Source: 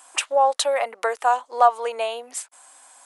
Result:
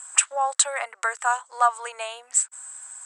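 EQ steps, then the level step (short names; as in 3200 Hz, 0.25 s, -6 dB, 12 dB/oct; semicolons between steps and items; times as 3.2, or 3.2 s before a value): HPF 760 Hz 12 dB/oct; synth low-pass 7900 Hz, resonance Q 14; bell 1500 Hz +10 dB 1 oct; -6.0 dB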